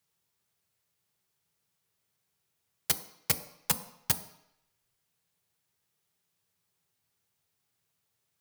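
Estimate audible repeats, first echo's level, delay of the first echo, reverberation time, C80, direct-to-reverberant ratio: no echo, no echo, no echo, 0.75 s, 16.0 dB, 8.5 dB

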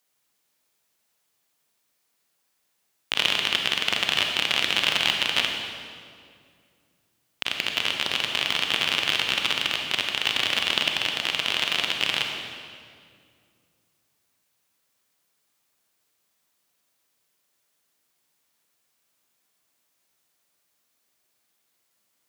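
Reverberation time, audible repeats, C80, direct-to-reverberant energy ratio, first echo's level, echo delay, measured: 2.2 s, no echo, 4.0 dB, 2.0 dB, no echo, no echo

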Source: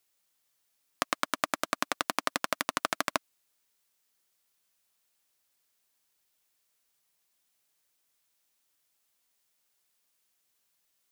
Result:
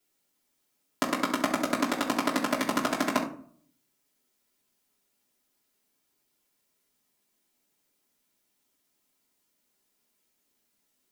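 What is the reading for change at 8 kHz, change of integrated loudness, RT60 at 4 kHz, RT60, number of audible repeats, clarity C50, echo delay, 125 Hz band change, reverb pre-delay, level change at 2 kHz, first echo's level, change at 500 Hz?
0.0 dB, +3.5 dB, 0.30 s, 0.55 s, no echo, 8.5 dB, no echo, +8.5 dB, 3 ms, +1.0 dB, no echo, +6.0 dB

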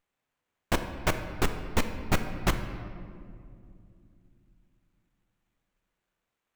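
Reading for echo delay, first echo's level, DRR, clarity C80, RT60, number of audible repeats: no echo, no echo, 7.0 dB, 9.5 dB, 2.5 s, no echo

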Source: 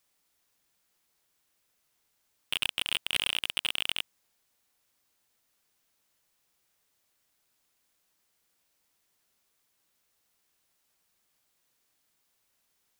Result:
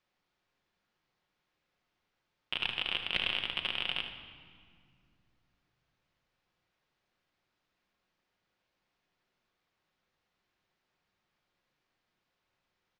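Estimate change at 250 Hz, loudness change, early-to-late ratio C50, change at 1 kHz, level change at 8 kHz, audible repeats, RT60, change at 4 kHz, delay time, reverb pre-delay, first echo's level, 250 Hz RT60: +1.5 dB, -3.0 dB, 6.0 dB, +0.5 dB, under -20 dB, 1, 2.1 s, -3.5 dB, 77 ms, 5 ms, -11.0 dB, 3.5 s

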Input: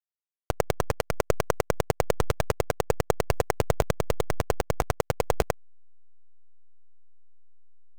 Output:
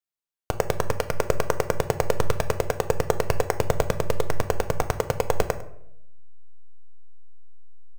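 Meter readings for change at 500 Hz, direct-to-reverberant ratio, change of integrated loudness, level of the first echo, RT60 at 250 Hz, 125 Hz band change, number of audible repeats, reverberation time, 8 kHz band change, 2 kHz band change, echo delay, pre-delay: +2.5 dB, 8.5 dB, +2.0 dB, -18.5 dB, 1.0 s, +1.5 dB, 1, 0.75 s, +1.5 dB, +1.5 dB, 102 ms, 4 ms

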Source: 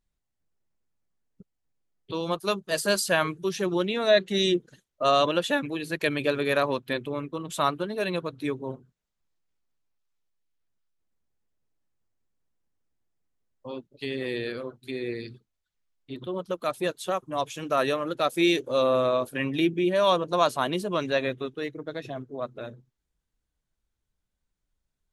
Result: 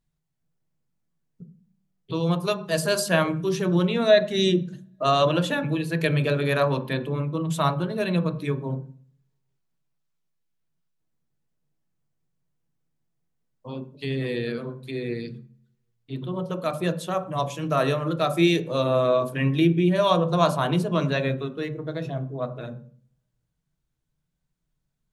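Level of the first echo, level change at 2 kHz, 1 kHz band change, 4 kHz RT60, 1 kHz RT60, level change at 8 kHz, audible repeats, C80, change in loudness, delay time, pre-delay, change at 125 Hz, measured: no echo, +0.5 dB, +1.0 dB, 0.40 s, 0.40 s, 0.0 dB, no echo, 17.5 dB, +2.5 dB, no echo, 3 ms, +12.0 dB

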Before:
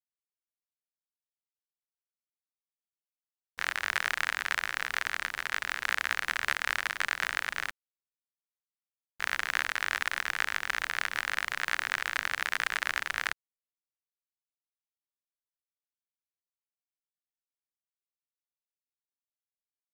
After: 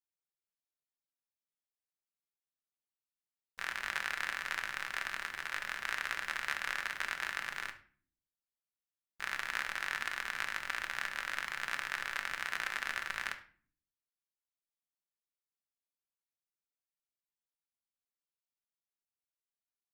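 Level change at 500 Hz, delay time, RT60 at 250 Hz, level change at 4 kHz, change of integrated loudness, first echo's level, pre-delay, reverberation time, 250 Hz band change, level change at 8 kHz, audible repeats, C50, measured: -6.0 dB, no echo, 0.85 s, -6.5 dB, -6.0 dB, no echo, 5 ms, 0.45 s, -4.5 dB, -6.5 dB, no echo, 12.0 dB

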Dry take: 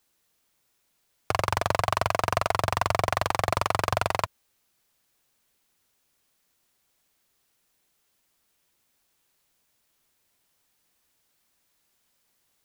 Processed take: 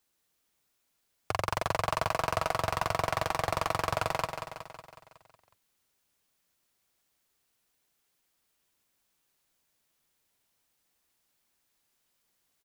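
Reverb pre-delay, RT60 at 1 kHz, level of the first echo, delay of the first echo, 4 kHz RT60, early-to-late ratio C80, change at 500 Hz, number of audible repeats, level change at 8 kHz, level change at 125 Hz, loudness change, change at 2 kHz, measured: no reverb, no reverb, -7.5 dB, 184 ms, no reverb, no reverb, -4.0 dB, 6, -4.5 dB, -6.0 dB, -4.5 dB, -4.5 dB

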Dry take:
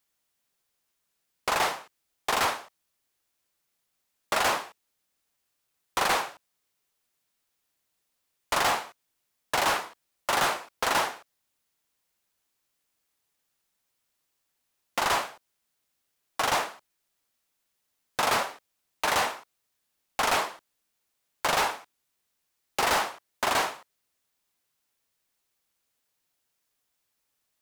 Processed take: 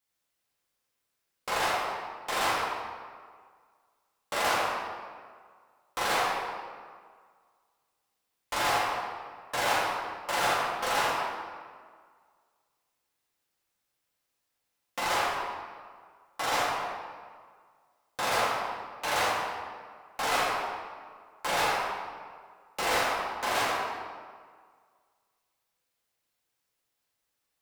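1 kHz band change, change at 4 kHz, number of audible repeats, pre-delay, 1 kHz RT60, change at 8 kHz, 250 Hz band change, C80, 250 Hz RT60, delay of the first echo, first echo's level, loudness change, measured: -0.5 dB, -2.0 dB, no echo, 3 ms, 1.8 s, -3.5 dB, -1.0 dB, 1.0 dB, 1.8 s, no echo, no echo, -2.0 dB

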